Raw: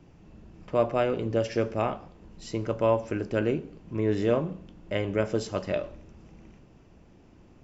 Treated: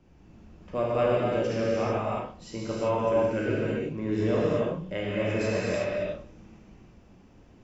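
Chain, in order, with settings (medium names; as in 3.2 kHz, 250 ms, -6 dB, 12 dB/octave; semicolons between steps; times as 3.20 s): spectral replace 5.12–5.70 s, 1.2–2.7 kHz after; gated-style reverb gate 400 ms flat, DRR -7 dB; trim -6.5 dB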